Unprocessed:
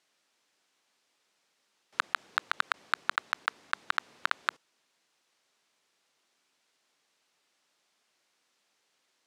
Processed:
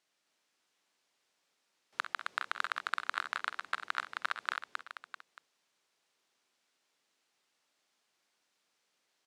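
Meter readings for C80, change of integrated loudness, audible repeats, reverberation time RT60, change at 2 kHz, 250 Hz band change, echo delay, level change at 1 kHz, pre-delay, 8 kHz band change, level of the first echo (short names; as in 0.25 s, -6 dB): none, -4.5 dB, 5, none, -4.0 dB, -4.0 dB, 47 ms, -4.0 dB, none, -4.0 dB, -12.5 dB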